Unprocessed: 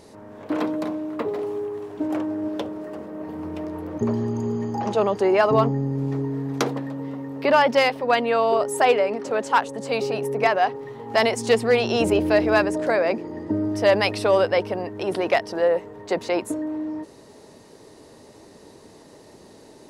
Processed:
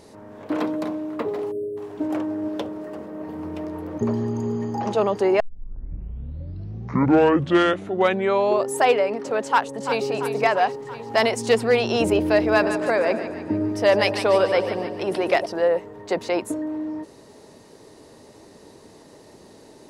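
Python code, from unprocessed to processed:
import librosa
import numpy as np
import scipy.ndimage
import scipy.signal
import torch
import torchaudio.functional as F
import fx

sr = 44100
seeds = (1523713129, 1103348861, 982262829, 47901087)

y = fx.spec_erase(x, sr, start_s=1.52, length_s=0.25, low_hz=660.0, high_hz=8000.0)
y = fx.echo_throw(y, sr, start_s=9.46, length_s=0.61, ms=340, feedback_pct=65, wet_db=-9.5)
y = fx.echo_split(y, sr, split_hz=800.0, low_ms=99, high_ms=148, feedback_pct=52, wet_db=-9, at=(12.46, 15.46))
y = fx.edit(y, sr, fx.tape_start(start_s=5.4, length_s=3.39), tone=tone)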